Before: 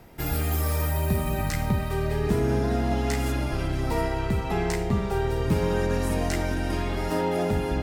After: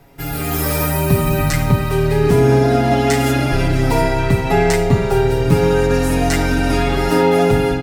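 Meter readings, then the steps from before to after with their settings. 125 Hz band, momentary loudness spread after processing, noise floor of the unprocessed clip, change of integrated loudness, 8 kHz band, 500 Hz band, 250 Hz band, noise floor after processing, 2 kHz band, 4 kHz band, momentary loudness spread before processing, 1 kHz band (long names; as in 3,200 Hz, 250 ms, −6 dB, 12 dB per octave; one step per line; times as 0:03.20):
+10.0 dB, 4 LU, −29 dBFS, +10.5 dB, +11.0 dB, +12.5 dB, +10.5 dB, −23 dBFS, +11.5 dB, +11.0 dB, 3 LU, +11.5 dB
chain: comb filter 7.2 ms, depth 77%
automatic gain control gain up to 11.5 dB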